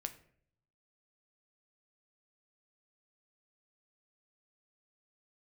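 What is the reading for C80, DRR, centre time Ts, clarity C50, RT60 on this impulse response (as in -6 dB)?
17.5 dB, 7.5 dB, 8 ms, 14.0 dB, 0.60 s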